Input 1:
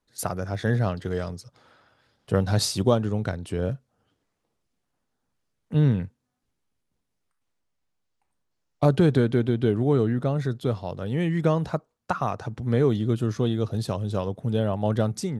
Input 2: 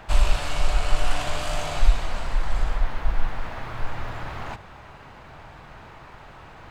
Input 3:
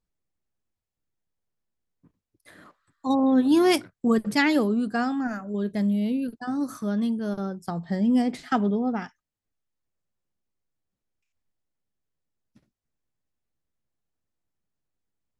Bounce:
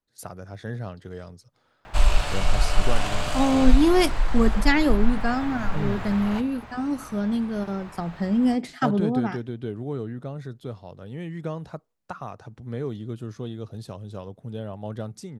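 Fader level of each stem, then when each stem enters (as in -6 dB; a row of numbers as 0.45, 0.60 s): -9.5, +0.5, +0.5 dB; 0.00, 1.85, 0.30 s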